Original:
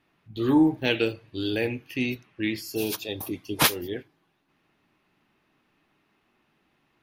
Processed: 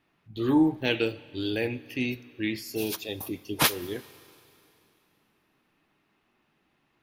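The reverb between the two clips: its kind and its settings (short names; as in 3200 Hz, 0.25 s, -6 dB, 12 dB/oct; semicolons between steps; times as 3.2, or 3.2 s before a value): Schroeder reverb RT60 2.9 s, combs from 33 ms, DRR 19.5 dB; gain -2 dB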